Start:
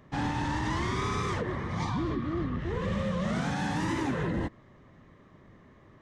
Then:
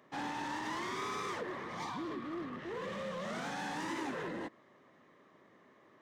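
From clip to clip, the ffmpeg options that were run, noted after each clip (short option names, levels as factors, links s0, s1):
-filter_complex "[0:a]highpass=320,asplit=2[s0][s1];[s1]aeval=exprs='0.0126*(abs(mod(val(0)/0.0126+3,4)-2)-1)':c=same,volume=0.316[s2];[s0][s2]amix=inputs=2:normalize=0,volume=0.531"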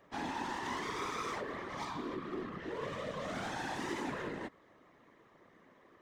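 -af "afftfilt=real='hypot(re,im)*cos(2*PI*random(0))':imag='hypot(re,im)*sin(2*PI*random(1))':win_size=512:overlap=0.75,volume=2"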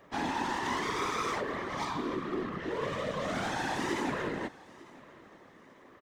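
-af "aecho=1:1:899|1798:0.0794|0.0254,volume=2"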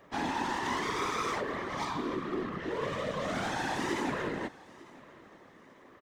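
-af anull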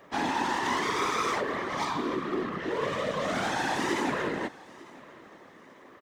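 -af "lowshelf=f=110:g=-9.5,volume=1.68"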